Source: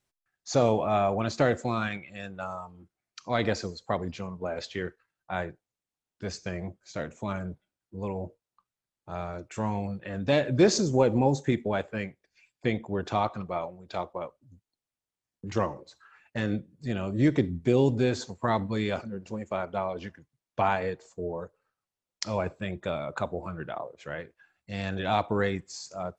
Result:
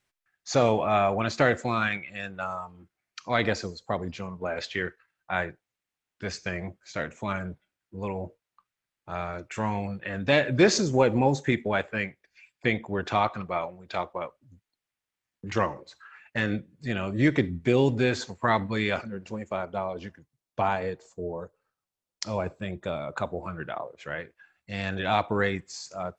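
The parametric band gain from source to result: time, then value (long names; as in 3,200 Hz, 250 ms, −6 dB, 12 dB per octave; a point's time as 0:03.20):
parametric band 2,000 Hz 1.7 octaves
0:03.31 +7.5 dB
0:03.90 −1.5 dB
0:04.51 +8.5 dB
0:19.17 +8.5 dB
0:19.69 −1.5 dB
0:22.91 −1.5 dB
0:23.46 +5 dB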